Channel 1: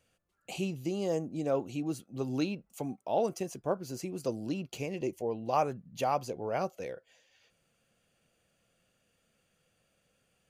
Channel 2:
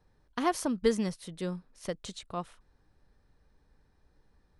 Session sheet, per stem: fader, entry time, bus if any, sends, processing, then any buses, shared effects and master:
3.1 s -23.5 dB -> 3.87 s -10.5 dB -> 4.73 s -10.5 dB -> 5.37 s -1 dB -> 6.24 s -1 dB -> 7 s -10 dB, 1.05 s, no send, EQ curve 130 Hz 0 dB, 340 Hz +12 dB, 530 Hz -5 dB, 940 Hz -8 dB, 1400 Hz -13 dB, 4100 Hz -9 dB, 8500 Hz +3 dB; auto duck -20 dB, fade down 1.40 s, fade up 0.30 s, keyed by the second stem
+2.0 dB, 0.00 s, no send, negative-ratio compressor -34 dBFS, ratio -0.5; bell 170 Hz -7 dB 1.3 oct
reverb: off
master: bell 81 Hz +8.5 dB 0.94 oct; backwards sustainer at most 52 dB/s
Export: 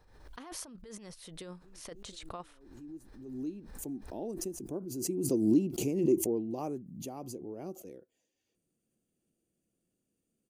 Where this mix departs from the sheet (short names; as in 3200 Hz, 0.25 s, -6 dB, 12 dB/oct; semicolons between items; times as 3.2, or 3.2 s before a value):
stem 2 +2.0 dB -> -8.5 dB; master: missing bell 81 Hz +8.5 dB 0.94 oct